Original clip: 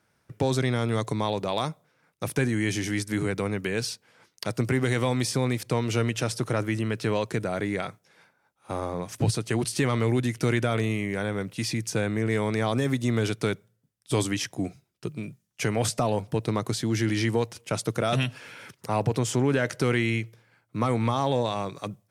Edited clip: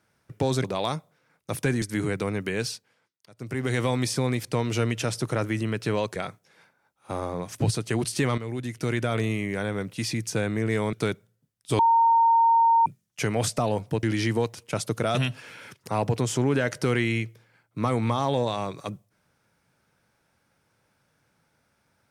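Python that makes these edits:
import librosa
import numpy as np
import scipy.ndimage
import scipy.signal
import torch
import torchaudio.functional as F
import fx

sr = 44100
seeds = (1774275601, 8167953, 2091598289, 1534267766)

y = fx.edit(x, sr, fx.cut(start_s=0.64, length_s=0.73),
    fx.cut(start_s=2.55, length_s=0.45),
    fx.fade_down_up(start_s=3.83, length_s=1.13, db=-23.0, fade_s=0.44),
    fx.cut(start_s=7.34, length_s=0.42),
    fx.fade_in_from(start_s=9.98, length_s=0.83, floor_db=-12.0),
    fx.cut(start_s=12.53, length_s=0.81),
    fx.bleep(start_s=14.2, length_s=1.07, hz=919.0, db=-15.5),
    fx.cut(start_s=16.44, length_s=0.57), tone=tone)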